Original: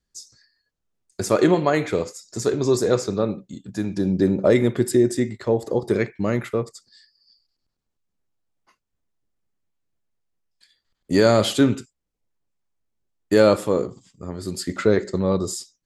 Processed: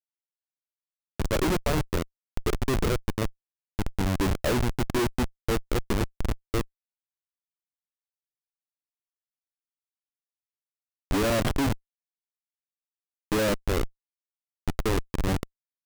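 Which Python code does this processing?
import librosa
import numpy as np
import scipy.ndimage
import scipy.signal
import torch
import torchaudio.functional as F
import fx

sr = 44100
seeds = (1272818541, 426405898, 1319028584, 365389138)

y = fx.schmitt(x, sr, flips_db=-17.5)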